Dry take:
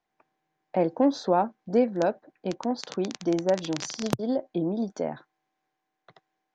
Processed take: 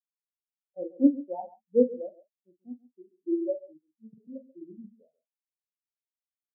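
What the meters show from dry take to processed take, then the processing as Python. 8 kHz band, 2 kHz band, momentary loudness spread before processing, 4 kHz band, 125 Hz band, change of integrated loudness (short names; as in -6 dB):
under -40 dB, under -40 dB, 9 LU, under -40 dB, under -20 dB, -1.0 dB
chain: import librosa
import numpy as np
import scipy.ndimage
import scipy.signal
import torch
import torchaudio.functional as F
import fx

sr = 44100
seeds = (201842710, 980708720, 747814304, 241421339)

y = fx.doubler(x, sr, ms=45.0, db=-4.0)
y = y + 10.0 ** (-4.5 / 20.0) * np.pad(y, (int(137 * sr / 1000.0), 0))[:len(y)]
y = fx.spectral_expand(y, sr, expansion=4.0)
y = y * 10.0 ** (-1.0 / 20.0)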